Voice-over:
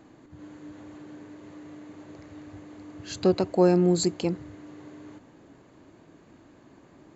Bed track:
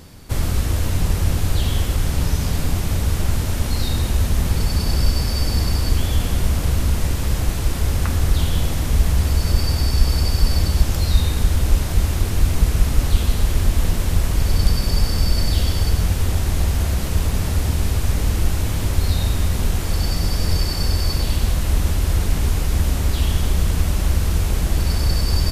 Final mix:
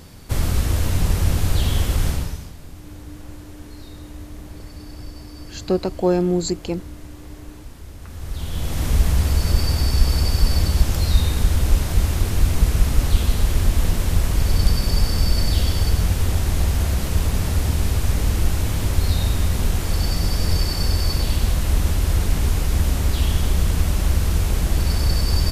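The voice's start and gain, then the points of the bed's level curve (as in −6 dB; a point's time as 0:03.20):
2.45 s, +1.5 dB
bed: 0:02.09 0 dB
0:02.55 −19 dB
0:07.99 −19 dB
0:08.84 −0.5 dB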